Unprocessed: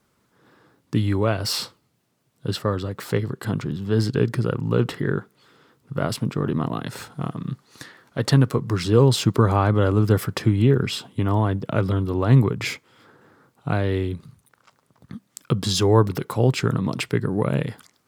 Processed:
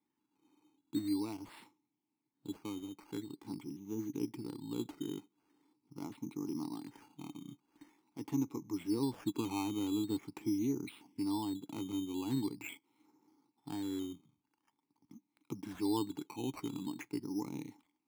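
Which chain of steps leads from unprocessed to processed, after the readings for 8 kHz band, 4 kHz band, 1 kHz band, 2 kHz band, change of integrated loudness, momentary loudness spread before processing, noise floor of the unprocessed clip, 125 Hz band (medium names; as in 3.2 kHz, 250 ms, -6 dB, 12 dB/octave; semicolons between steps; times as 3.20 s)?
-16.5 dB, -19.0 dB, -18.5 dB, -22.5 dB, -17.0 dB, 13 LU, -67 dBFS, -28.0 dB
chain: vowel filter u; decimation with a swept rate 10×, swing 60% 0.44 Hz; trim -5.5 dB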